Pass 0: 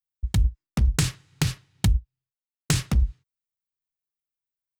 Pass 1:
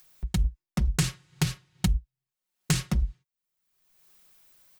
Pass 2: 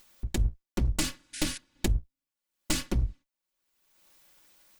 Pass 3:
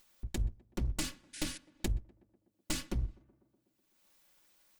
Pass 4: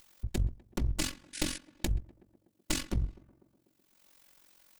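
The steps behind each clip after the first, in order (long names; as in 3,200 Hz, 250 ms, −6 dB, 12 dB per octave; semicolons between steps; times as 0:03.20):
upward compression, threshold −30 dBFS; comb filter 5.5 ms; level −4 dB
lower of the sound and its delayed copy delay 3.5 ms; sound drawn into the spectrogram noise, 0:01.33–0:01.58, 1,400–11,000 Hz −40 dBFS
tape delay 125 ms, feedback 78%, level −21 dB, low-pass 1,600 Hz; level −7 dB
in parallel at −4 dB: hard clipping −37.5 dBFS, distortion −6 dB; on the sum: amplitude modulation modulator 45 Hz, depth 60%; level +4.5 dB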